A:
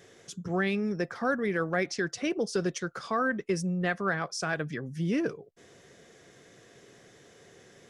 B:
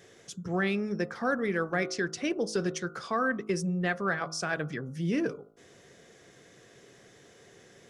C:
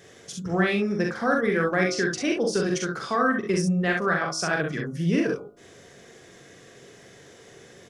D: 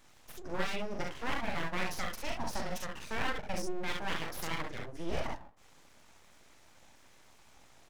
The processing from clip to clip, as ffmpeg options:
-af "bandreject=f=53.55:t=h:w=4,bandreject=f=107.1:t=h:w=4,bandreject=f=160.65:t=h:w=4,bandreject=f=214.2:t=h:w=4,bandreject=f=267.75:t=h:w=4,bandreject=f=321.3:t=h:w=4,bandreject=f=374.85:t=h:w=4,bandreject=f=428.4:t=h:w=4,bandreject=f=481.95:t=h:w=4,bandreject=f=535.5:t=h:w=4,bandreject=f=589.05:t=h:w=4,bandreject=f=642.6:t=h:w=4,bandreject=f=696.15:t=h:w=4,bandreject=f=749.7:t=h:w=4,bandreject=f=803.25:t=h:w=4,bandreject=f=856.8:t=h:w=4,bandreject=f=910.35:t=h:w=4,bandreject=f=963.9:t=h:w=4,bandreject=f=1017.45:t=h:w=4,bandreject=f=1071:t=h:w=4,bandreject=f=1124.55:t=h:w=4,bandreject=f=1178.1:t=h:w=4,bandreject=f=1231.65:t=h:w=4,bandreject=f=1285.2:t=h:w=4,bandreject=f=1338.75:t=h:w=4,bandreject=f=1392.3:t=h:w=4,bandreject=f=1445.85:t=h:w=4,bandreject=f=1499.4:t=h:w=4"
-af "aecho=1:1:43|65:0.668|0.562,volume=1.58"
-af "aeval=exprs='abs(val(0))':c=same,volume=0.355"

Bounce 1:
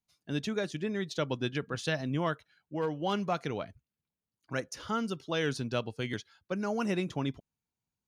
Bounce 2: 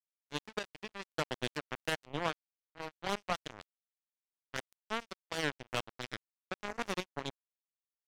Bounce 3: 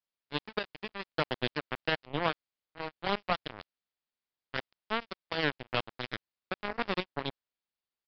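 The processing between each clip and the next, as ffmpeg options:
-af "acrusher=bits=3:mix=0:aa=0.5,volume=0.794"
-af "aresample=11025,aresample=44100,volume=1.68"

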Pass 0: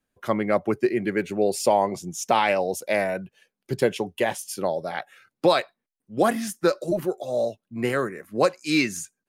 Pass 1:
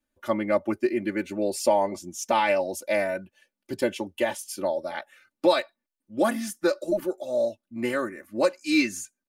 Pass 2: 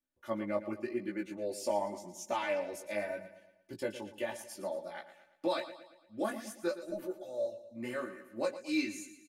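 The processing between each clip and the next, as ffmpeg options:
-af "aecho=1:1:3.4:0.9,volume=0.562"
-af "flanger=delay=15.5:depth=4.1:speed=0.86,aecho=1:1:115|230|345|460|575:0.224|0.105|0.0495|0.0232|0.0109,volume=0.376"

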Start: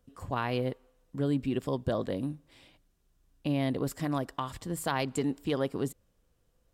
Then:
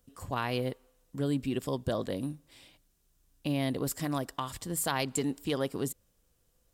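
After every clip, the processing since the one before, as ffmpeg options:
-af "highshelf=f=4300:g=11,volume=0.841"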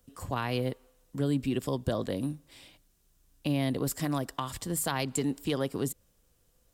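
-filter_complex "[0:a]acrossover=split=250[s0][s1];[s1]acompressor=threshold=0.0158:ratio=1.5[s2];[s0][s2]amix=inputs=2:normalize=0,volume=1.41"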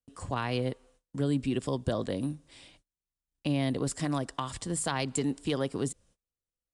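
-af "agate=range=0.0398:threshold=0.001:ratio=16:detection=peak,aresample=22050,aresample=44100"

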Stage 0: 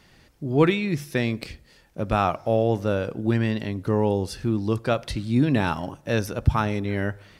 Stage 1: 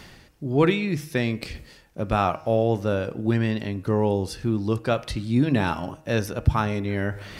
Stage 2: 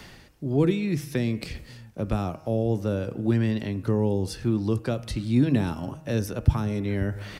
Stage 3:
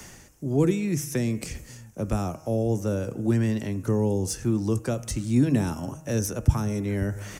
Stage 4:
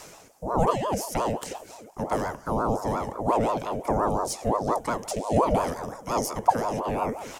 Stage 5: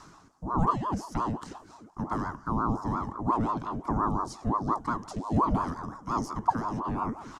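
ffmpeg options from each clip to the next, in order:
-af "areverse,acompressor=mode=upward:threshold=0.0355:ratio=2.5,areverse,bandreject=f=157.3:t=h:w=4,bandreject=f=314.6:t=h:w=4,bandreject=f=471.9:t=h:w=4,bandreject=f=629.2:t=h:w=4,bandreject=f=786.5:t=h:w=4,bandreject=f=943.8:t=h:w=4,bandreject=f=1101.1:t=h:w=4,bandreject=f=1258.4:t=h:w=4,bandreject=f=1415.7:t=h:w=4,bandreject=f=1573:t=h:w=4,bandreject=f=1730.3:t=h:w=4,bandreject=f=1887.6:t=h:w=4,bandreject=f=2044.9:t=h:w=4,bandreject=f=2202.2:t=h:w=4,bandreject=f=2359.5:t=h:w=4,bandreject=f=2516.8:t=h:w=4,bandreject=f=2674.1:t=h:w=4,bandreject=f=2831.4:t=h:w=4,bandreject=f=2988.7:t=h:w=4"
-filter_complex "[0:a]acrossover=split=170|440|5200[s0][s1][s2][s3];[s0]aecho=1:1:535:0.188[s4];[s2]acompressor=threshold=0.0178:ratio=6[s5];[s4][s1][s5][s3]amix=inputs=4:normalize=0"
-filter_complex "[0:a]highshelf=f=5200:t=q:w=3:g=7.5,acrossover=split=160|6100[s0][s1][s2];[s2]asoftclip=type=hard:threshold=0.0376[s3];[s0][s1][s3]amix=inputs=3:normalize=0"
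-af "bandreject=f=138.2:t=h:w=4,bandreject=f=276.4:t=h:w=4,bandreject=f=414.6:t=h:w=4,bandreject=f=552.8:t=h:w=4,bandreject=f=691:t=h:w=4,bandreject=f=829.2:t=h:w=4,bandreject=f=967.4:t=h:w=4,bandreject=f=1105.6:t=h:w=4,bandreject=f=1243.8:t=h:w=4,bandreject=f=1382:t=h:w=4,bandreject=f=1520.2:t=h:w=4,bandreject=f=1658.4:t=h:w=4,bandreject=f=1796.6:t=h:w=4,bandreject=f=1934.8:t=h:w=4,bandreject=f=2073:t=h:w=4,bandreject=f=2211.2:t=h:w=4,bandreject=f=2349.4:t=h:w=4,bandreject=f=2487.6:t=h:w=4,bandreject=f=2625.8:t=h:w=4,bandreject=f=2764:t=h:w=4,bandreject=f=2902.2:t=h:w=4,bandreject=f=3040.4:t=h:w=4,bandreject=f=3178.6:t=h:w=4,bandreject=f=3316.8:t=h:w=4,bandreject=f=3455:t=h:w=4,bandreject=f=3593.2:t=h:w=4,bandreject=f=3731.4:t=h:w=4,bandreject=f=3869.6:t=h:w=4,bandreject=f=4007.8:t=h:w=4,bandreject=f=4146:t=h:w=4,bandreject=f=4284.2:t=h:w=4,aeval=exprs='val(0)*sin(2*PI*580*n/s+580*0.45/5.7*sin(2*PI*5.7*n/s))':c=same,volume=1.26"
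-af "firequalizer=gain_entry='entry(310,0);entry(510,-18);entry(1100,3);entry(2300,-15);entry(4100,-8);entry(15000,-29)':delay=0.05:min_phase=1"

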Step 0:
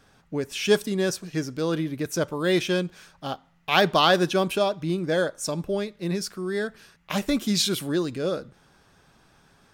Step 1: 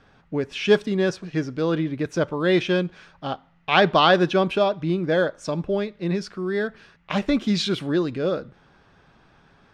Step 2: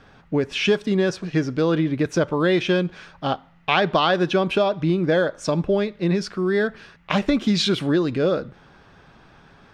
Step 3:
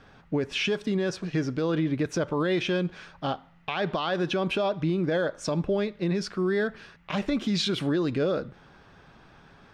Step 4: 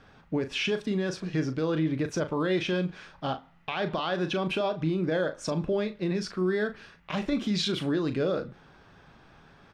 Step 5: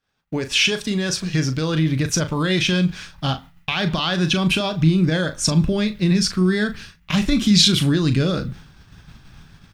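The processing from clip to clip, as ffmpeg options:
-af "lowpass=3400,volume=1.41"
-af "acompressor=threshold=0.0891:ratio=6,volume=1.88"
-af "alimiter=limit=0.168:level=0:latency=1:release=50,volume=0.708"
-filter_complex "[0:a]asplit=2[s0][s1];[s1]adelay=38,volume=0.316[s2];[s0][s2]amix=inputs=2:normalize=0,volume=0.794"
-af "asubboost=boost=7:cutoff=180,agate=range=0.0224:threshold=0.0112:ratio=3:detection=peak,crystalizer=i=6:c=0,volume=1.58"

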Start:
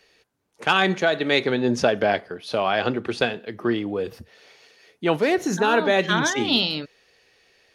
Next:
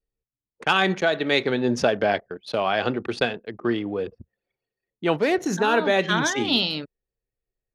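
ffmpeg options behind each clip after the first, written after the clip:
-af "anlmdn=2.51,volume=0.891"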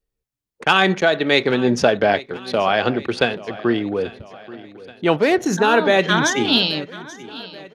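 -af "aecho=1:1:832|1664|2496|3328:0.119|0.0618|0.0321|0.0167,volume=1.78"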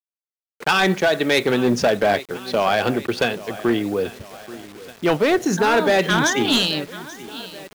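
-af "asoftclip=type=hard:threshold=0.266,acrusher=bits=6:mix=0:aa=0.000001"

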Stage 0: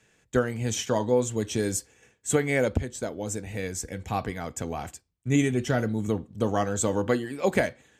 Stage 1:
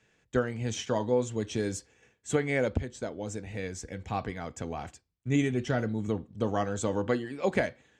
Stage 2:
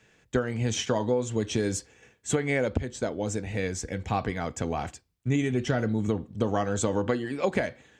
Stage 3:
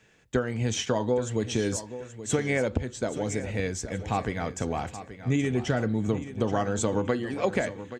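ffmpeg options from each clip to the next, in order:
-af "lowpass=5700,volume=0.668"
-af "acompressor=threshold=0.0398:ratio=6,volume=2.11"
-af "aecho=1:1:828|1656|2484|3312:0.224|0.0828|0.0306|0.0113"

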